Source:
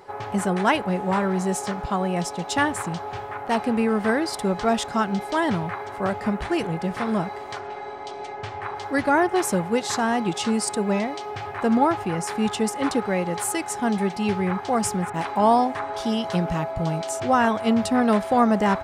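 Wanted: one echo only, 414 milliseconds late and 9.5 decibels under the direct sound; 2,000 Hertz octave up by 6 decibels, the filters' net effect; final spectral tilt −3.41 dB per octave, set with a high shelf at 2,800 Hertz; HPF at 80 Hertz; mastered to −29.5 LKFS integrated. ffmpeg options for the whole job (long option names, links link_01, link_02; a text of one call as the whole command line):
ffmpeg -i in.wav -af "highpass=80,equalizer=frequency=2000:width_type=o:gain=4.5,highshelf=frequency=2800:gain=8.5,aecho=1:1:414:0.335,volume=-8dB" out.wav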